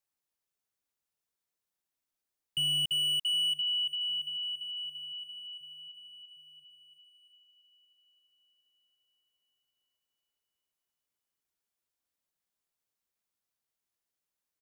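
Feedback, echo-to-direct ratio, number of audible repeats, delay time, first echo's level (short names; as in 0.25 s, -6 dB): 57%, -18.0 dB, 4, 0.758 s, -19.5 dB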